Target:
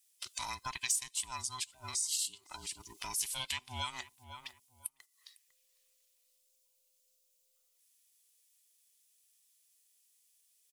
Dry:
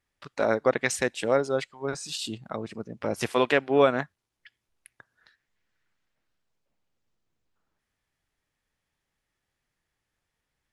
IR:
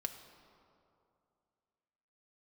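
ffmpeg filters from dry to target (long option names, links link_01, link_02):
-filter_complex "[0:a]afftfilt=real='real(if(between(b,1,1008),(2*floor((b-1)/24)+1)*24-b,b),0)':imag='imag(if(between(b,1,1008),(2*floor((b-1)/24)+1)*24-b,b),0)*if(between(b,1,1008),-1,1)':win_size=2048:overlap=0.75,agate=range=-10dB:threshold=-55dB:ratio=16:detection=peak,firequalizer=gain_entry='entry(110,0);entry(290,-9);entry(610,-1);entry(8900,15)':delay=0.05:min_phase=1,asplit=2[link_01][link_02];[link_02]adelay=502,lowpass=frequency=1500:poles=1,volume=-22dB,asplit=2[link_03][link_04];[link_04]adelay=502,lowpass=frequency=1500:poles=1,volume=0.18[link_05];[link_03][link_05]amix=inputs=2:normalize=0[link_06];[link_01][link_06]amix=inputs=2:normalize=0,aexciter=amount=5.1:drive=5.5:freq=2400,lowshelf=frequency=290:gain=-7.5,acompressor=threshold=-42dB:ratio=2.5,volume=-2.5dB"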